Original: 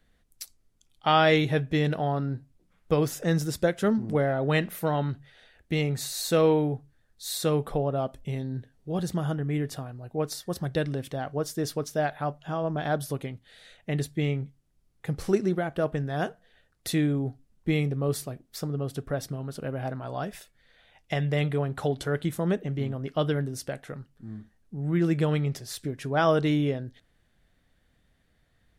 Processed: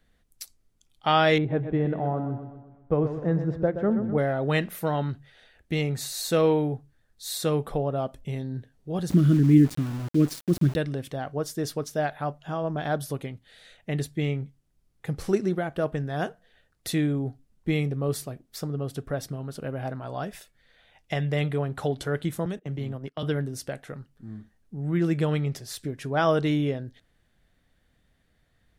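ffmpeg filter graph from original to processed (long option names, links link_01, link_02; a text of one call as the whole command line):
ffmpeg -i in.wav -filter_complex "[0:a]asettb=1/sr,asplit=3[link_01][link_02][link_03];[link_01]atrim=end=1.384[link_04];[link_02]atrim=start=1.38:end=4.18,asetpts=PTS-STARTPTS,afade=type=in:duration=0.004:curve=qsin,afade=type=out:start_time=2.796:duration=0.004:curve=qsin,lowpass=1100,aecho=1:1:125|250|375|500|625|750:0.335|0.171|0.0871|0.0444|0.0227|0.0116,atrim=end_sample=123480[link_05];[link_03]atrim=start=4.176[link_06];[link_04][link_05]acrossfade=duration=0.004:curve1=hsin:curve2=qsin[link_07];[link_07][link_06]acrossfade=duration=0.004:curve1=qsin:curve2=hsin,asettb=1/sr,asplit=3[link_08][link_09][link_10];[link_08]atrim=end=9.104[link_11];[link_09]atrim=start=9.1:end=10.76,asetpts=PTS-STARTPTS,afade=type=in:duration=0.004:curve=qsin,afade=type=out:start_time=1.656:duration=0.004:curve=qsin,asuperstop=centerf=860:order=4:qfactor=1.4,lowshelf=frequency=400:width_type=q:width=3:gain=8.5,aeval=exprs='val(0)*gte(abs(val(0)),0.0178)':channel_layout=same[link_12];[link_10]atrim=start=10.756[link_13];[link_11][link_12]acrossfade=duration=0.004:curve1=hsin:curve2=qsin[link_14];[link_14][link_13]acrossfade=duration=0.004:curve1=qsin:curve2=hsin,asettb=1/sr,asplit=3[link_15][link_16][link_17];[link_15]atrim=end=22.454[link_18];[link_16]atrim=start=22.45:end=23.23,asetpts=PTS-STARTPTS,afade=type=in:duration=0.004:curve=qsin,afade=type=out:start_time=0.776:duration=0.004:curve=qsin,agate=range=-22dB:threshold=-34dB:ratio=16:release=100:detection=peak,acrossover=split=130|3000[link_19][link_20][link_21];[link_20]acompressor=threshold=-31dB:ratio=4:attack=3.2:release=140:knee=2.83:detection=peak[link_22];[link_19][link_22][link_21]amix=inputs=3:normalize=0[link_23];[link_17]atrim=start=23.226[link_24];[link_18][link_23]acrossfade=duration=0.004:curve1=hsin:curve2=qsin[link_25];[link_25][link_24]acrossfade=duration=0.004:curve1=qsin:curve2=hsin" out.wav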